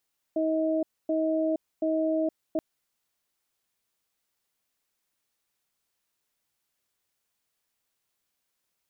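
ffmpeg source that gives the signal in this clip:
-f lavfi -i "aevalsrc='0.0501*(sin(2*PI*318*t)+sin(2*PI*635*t))*clip(min(mod(t,0.73),0.47-mod(t,0.73))/0.005,0,1)':d=2.23:s=44100"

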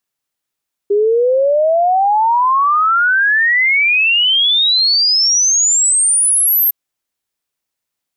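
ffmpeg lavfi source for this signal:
-f lavfi -i "aevalsrc='0.335*clip(min(t,5.81-t)/0.01,0,1)*sin(2*PI*400*5.81/log(13000/400)*(exp(log(13000/400)*t/5.81)-1))':d=5.81:s=44100"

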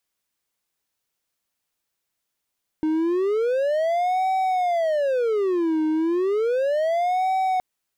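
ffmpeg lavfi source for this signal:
-f lavfi -i "aevalsrc='0.141*(1-4*abs(mod((535*t-224/(2*PI*0.33)*sin(2*PI*0.33*t))+0.25,1)-0.5))':d=4.77:s=44100"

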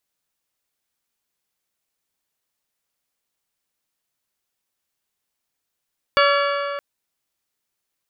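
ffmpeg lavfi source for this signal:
-f lavfi -i "aevalsrc='0.158*pow(10,-3*t/3)*sin(2*PI*568*t)+0.133*pow(10,-3*t/2.437)*sin(2*PI*1136*t)+0.112*pow(10,-3*t/2.307)*sin(2*PI*1363.2*t)+0.0944*pow(10,-3*t/2.158)*sin(2*PI*1704*t)+0.0794*pow(10,-3*t/1.979)*sin(2*PI*2272*t)+0.0668*pow(10,-3*t/1.851)*sin(2*PI*2840*t)+0.0562*pow(10,-3*t/1.753)*sin(2*PI*3408*t)+0.0473*pow(10,-3*t/1.608)*sin(2*PI*4544*t)':d=0.62:s=44100"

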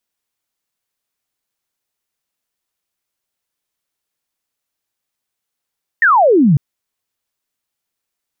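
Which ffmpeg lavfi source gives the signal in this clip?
-f lavfi -i "aevalsrc='0.447*clip(t/0.002,0,1)*clip((0.55-t)/0.002,0,1)*sin(2*PI*1900*0.55/log(130/1900)*(exp(log(130/1900)*t/0.55)-1))':d=0.55:s=44100"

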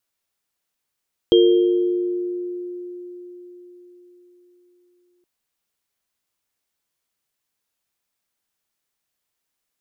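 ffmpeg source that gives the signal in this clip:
-f lavfi -i "aevalsrc='0.299*pow(10,-3*t/4.58)*sin(2*PI*355*t)+0.224*pow(10,-3*t/1.96)*sin(2*PI*458*t)+0.1*pow(10,-3*t/0.82)*sin(2*PI*3210*t)':d=3.92:s=44100"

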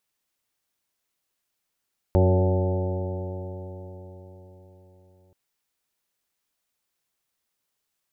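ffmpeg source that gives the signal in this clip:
-f lavfi -i "aevalsrc='0.15*pow(10,-3*t/4.53)*sin(2*PI*90.88*t)+0.0596*pow(10,-3*t/4.53)*sin(2*PI*182.25*t)+0.0316*pow(10,-3*t/4.53)*sin(2*PI*274.6*t)+0.075*pow(10,-3*t/4.53)*sin(2*PI*368.39*t)+0.0355*pow(10,-3*t/4.53)*sin(2*PI*464.1*t)+0.0708*pow(10,-3*t/4.53)*sin(2*PI*562.17*t)+0.0188*pow(10,-3*t/4.53)*sin(2*PI*663.04*t)+0.02*pow(10,-3*t/4.53)*sin(2*PI*767.1*t)+0.0224*pow(10,-3*t/4.53)*sin(2*PI*874.75*t)':d=3.18:s=44100"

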